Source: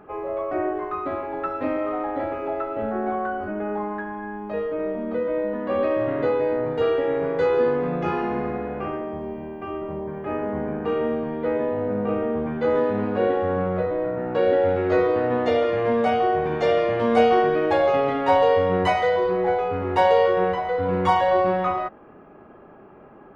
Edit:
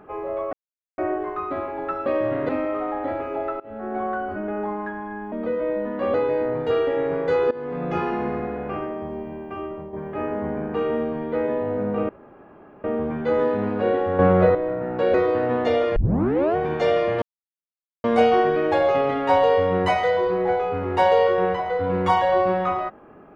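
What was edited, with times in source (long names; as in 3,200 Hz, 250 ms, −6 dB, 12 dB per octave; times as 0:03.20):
0:00.53: splice in silence 0.45 s
0:02.72–0:03.18: fade in, from −22.5 dB
0:04.44–0:05.00: remove
0:05.82–0:06.25: move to 0:01.61
0:07.62–0:08.03: fade in, from −18.5 dB
0:09.60–0:10.04: fade out equal-power, to −9 dB
0:12.20: splice in room tone 0.75 s
0:13.55–0:13.91: clip gain +8 dB
0:14.50–0:14.95: remove
0:15.77: tape start 0.60 s
0:17.03: splice in silence 0.82 s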